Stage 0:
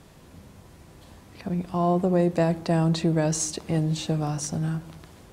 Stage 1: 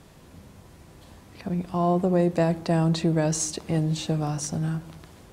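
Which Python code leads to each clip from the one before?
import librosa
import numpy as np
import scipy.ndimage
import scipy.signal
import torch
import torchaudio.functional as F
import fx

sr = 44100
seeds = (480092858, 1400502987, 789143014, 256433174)

y = x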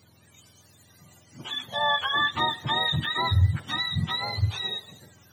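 y = fx.octave_mirror(x, sr, pivot_hz=780.0)
y = fx.noise_reduce_blind(y, sr, reduce_db=6)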